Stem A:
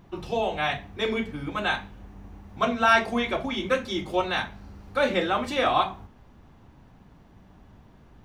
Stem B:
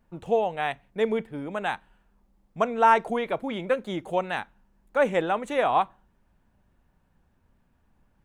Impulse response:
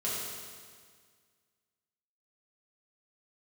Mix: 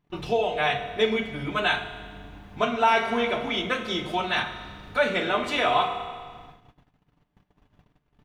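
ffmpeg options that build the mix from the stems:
-filter_complex "[0:a]aecho=1:1:6.8:0.43,volume=0dB,asplit=2[link_01][link_02];[link_02]volume=-17.5dB[link_03];[1:a]volume=-8dB,asplit=3[link_04][link_05][link_06];[link_05]volume=-7dB[link_07];[link_06]apad=whole_len=363898[link_08];[link_01][link_08]sidechaincompress=threshold=-33dB:ratio=8:attack=34:release=930[link_09];[2:a]atrim=start_sample=2205[link_10];[link_03][link_07]amix=inputs=2:normalize=0[link_11];[link_11][link_10]afir=irnorm=-1:irlink=0[link_12];[link_09][link_04][link_12]amix=inputs=3:normalize=0,agate=range=-24dB:threshold=-47dB:ratio=16:detection=peak,equalizer=frequency=2700:width_type=o:width=1.4:gain=5.5"

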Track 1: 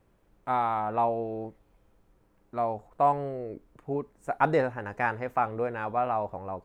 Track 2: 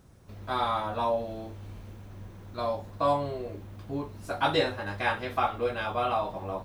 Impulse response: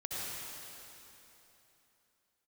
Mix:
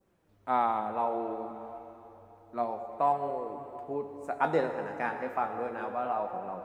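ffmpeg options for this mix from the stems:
-filter_complex "[0:a]highpass=frequency=180:width=0.5412,highpass=frequency=180:width=1.3066,volume=-1.5dB,asplit=2[link_01][link_02];[link_02]volume=-7dB[link_03];[1:a]volume=-17dB[link_04];[2:a]atrim=start_sample=2205[link_05];[link_03][link_05]afir=irnorm=-1:irlink=0[link_06];[link_01][link_04][link_06]amix=inputs=3:normalize=0,adynamicequalizer=threshold=0.00891:dfrequency=2100:dqfactor=0.86:tfrequency=2100:tqfactor=0.86:attack=5:release=100:ratio=0.375:range=2:mode=cutabove:tftype=bell,flanger=delay=5:depth=8.8:regen=60:speed=0.31:shape=triangular"

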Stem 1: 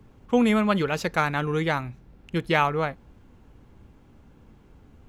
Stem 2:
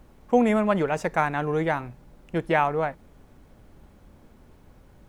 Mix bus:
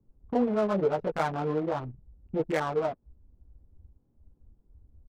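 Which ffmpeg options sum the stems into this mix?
ffmpeg -i stem1.wav -i stem2.wav -filter_complex "[0:a]acompressor=threshold=-32dB:ratio=6,aeval=exprs='(mod(9.44*val(0)+1,2)-1)/9.44':channel_layout=same,volume=0.5dB[link_01];[1:a]equalizer=frequency=490:width=1:gain=9.5,acrusher=bits=6:dc=4:mix=0:aa=0.000001,flanger=delay=5.6:depth=6.7:regen=7:speed=0.45:shape=sinusoidal,volume=-1,adelay=19,volume=-7dB[link_02];[link_01][link_02]amix=inputs=2:normalize=0,afwtdn=0.0224,adynamicsmooth=sensitivity=5.5:basefreq=620" out.wav

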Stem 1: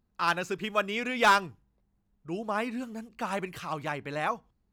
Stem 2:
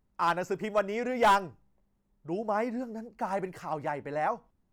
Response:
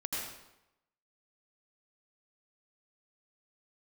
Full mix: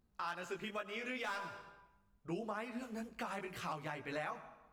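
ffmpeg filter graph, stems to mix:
-filter_complex "[0:a]flanger=delay=17:depth=2.7:speed=2.2,volume=1.5dB,asplit=2[link_01][link_02];[link_02]volume=-21.5dB[link_03];[1:a]volume=-1,volume=-14dB,asplit=2[link_04][link_05];[link_05]apad=whole_len=208418[link_06];[link_01][link_06]sidechaincompress=threshold=-44dB:ratio=8:attack=16:release=728[link_07];[2:a]atrim=start_sample=2205[link_08];[link_03][link_08]afir=irnorm=-1:irlink=0[link_09];[link_07][link_04][link_09]amix=inputs=3:normalize=0,alimiter=level_in=6.5dB:limit=-24dB:level=0:latency=1:release=374,volume=-6.5dB"

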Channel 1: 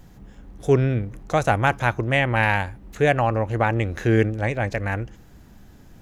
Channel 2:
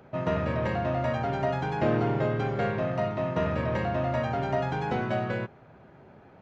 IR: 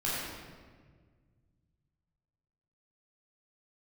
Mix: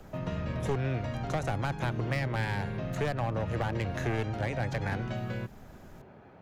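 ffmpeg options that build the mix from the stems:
-filter_complex "[0:a]aeval=exprs='clip(val(0),-1,0.126)':channel_layout=same,volume=-4dB[link_01];[1:a]acrossover=split=270|3000[link_02][link_03][link_04];[link_03]acompressor=threshold=-40dB:ratio=4[link_05];[link_02][link_05][link_04]amix=inputs=3:normalize=0,volume=-0.5dB[link_06];[link_01][link_06]amix=inputs=2:normalize=0,acrossover=split=150|470[link_07][link_08][link_09];[link_07]acompressor=threshold=-33dB:ratio=4[link_10];[link_08]acompressor=threshold=-38dB:ratio=4[link_11];[link_09]acompressor=threshold=-33dB:ratio=4[link_12];[link_10][link_11][link_12]amix=inputs=3:normalize=0"

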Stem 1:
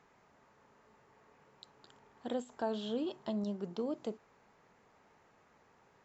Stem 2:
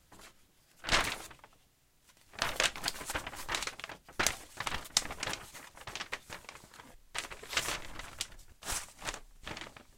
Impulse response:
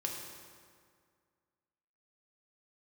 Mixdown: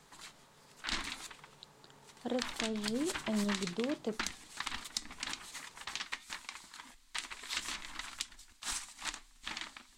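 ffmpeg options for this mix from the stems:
-filter_complex "[0:a]equalizer=frequency=150:width_type=o:width=0.28:gain=8.5,volume=2dB[link_01];[1:a]equalizer=frequency=125:width_type=o:width=1:gain=-12,equalizer=frequency=250:width_type=o:width=1:gain=9,equalizer=frequency=500:width_type=o:width=1:gain=-10,equalizer=frequency=1000:width_type=o:width=1:gain=8,equalizer=frequency=2000:width_type=o:width=1:gain=6,equalizer=frequency=4000:width_type=o:width=1:gain=10,equalizer=frequency=8000:width_type=o:width=1:gain=9,flanger=delay=3.7:depth=2.9:regen=89:speed=1.7:shape=sinusoidal,volume=-1.5dB[link_02];[link_01][link_02]amix=inputs=2:normalize=0,acrossover=split=420[link_03][link_04];[link_04]acompressor=threshold=-35dB:ratio=8[link_05];[link_03][link_05]amix=inputs=2:normalize=0"

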